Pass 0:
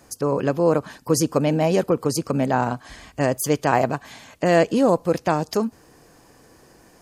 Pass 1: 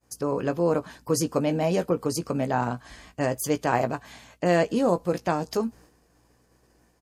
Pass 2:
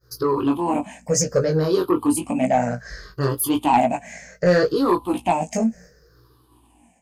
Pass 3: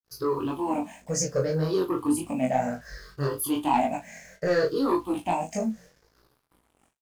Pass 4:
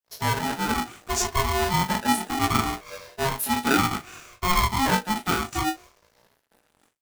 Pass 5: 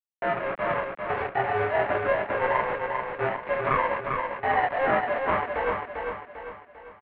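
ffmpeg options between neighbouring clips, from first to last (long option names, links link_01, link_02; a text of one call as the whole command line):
ffmpeg -i in.wav -filter_complex "[0:a]asplit=2[link_01][link_02];[link_02]adelay=17,volume=-9.5dB[link_03];[link_01][link_03]amix=inputs=2:normalize=0,aeval=exprs='val(0)+0.00224*(sin(2*PI*60*n/s)+sin(2*PI*2*60*n/s)/2+sin(2*PI*3*60*n/s)/3+sin(2*PI*4*60*n/s)/4+sin(2*PI*5*60*n/s)/5)':channel_layout=same,agate=range=-33dB:threshold=-42dB:ratio=3:detection=peak,volume=-5dB" out.wav
ffmpeg -i in.wav -af "afftfilt=real='re*pow(10,22/40*sin(2*PI*(0.58*log(max(b,1)*sr/1024/100)/log(2)-(-0.66)*(pts-256)/sr)))':imag='im*pow(10,22/40*sin(2*PI*(0.58*log(max(b,1)*sr/1024/100)/log(2)-(-0.66)*(pts-256)/sr)))':win_size=1024:overlap=0.75,flanger=delay=15.5:depth=6.8:speed=0.78,asoftclip=type=tanh:threshold=-12.5dB,volume=4.5dB" out.wav
ffmpeg -i in.wav -filter_complex "[0:a]acrusher=bits=7:mix=0:aa=0.5,flanger=delay=19.5:depth=4.2:speed=1.8,asplit=2[link_01][link_02];[link_02]adelay=37,volume=-13.5dB[link_03];[link_01][link_03]amix=inputs=2:normalize=0,volume=-3.5dB" out.wav
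ffmpeg -i in.wav -af "aeval=exprs='val(0)*sgn(sin(2*PI*540*n/s))':channel_layout=same,volume=2dB" out.wav
ffmpeg -i in.wav -af "aresample=11025,acrusher=bits=4:mix=0:aa=0.000001,aresample=44100,aecho=1:1:397|794|1191|1588|1985|2382:0.596|0.268|0.121|0.0543|0.0244|0.011,highpass=frequency=480:width_type=q:width=0.5412,highpass=frequency=480:width_type=q:width=1.307,lowpass=frequency=2500:width_type=q:width=0.5176,lowpass=frequency=2500:width_type=q:width=0.7071,lowpass=frequency=2500:width_type=q:width=1.932,afreqshift=-280" out.wav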